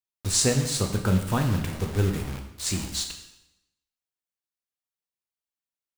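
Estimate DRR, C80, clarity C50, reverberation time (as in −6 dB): 3.5 dB, 10.0 dB, 7.5 dB, 0.90 s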